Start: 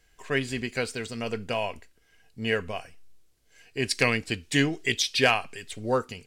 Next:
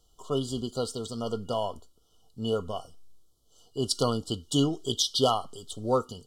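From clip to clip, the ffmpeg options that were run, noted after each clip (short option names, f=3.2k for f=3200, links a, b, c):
-af "afftfilt=real='re*(1-between(b*sr/4096,1400,2900))':imag='im*(1-between(b*sr/4096,1400,2900))':win_size=4096:overlap=0.75"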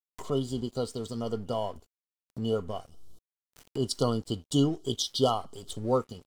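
-af "aeval=exprs='sgn(val(0))*max(abs(val(0))-0.00282,0)':c=same,tiltshelf=f=720:g=3,acompressor=mode=upward:threshold=-29dB:ratio=2.5,volume=-1.5dB"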